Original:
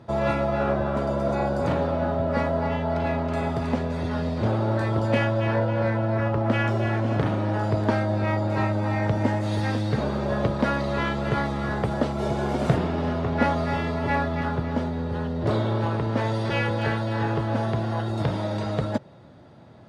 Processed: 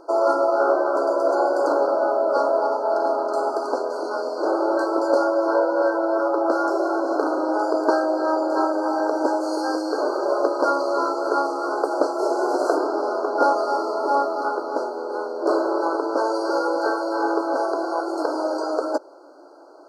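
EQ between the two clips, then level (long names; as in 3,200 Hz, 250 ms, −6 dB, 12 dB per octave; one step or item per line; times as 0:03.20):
linear-phase brick-wall high-pass 280 Hz
linear-phase brick-wall band-stop 1,600–4,100 Hz
+6.5 dB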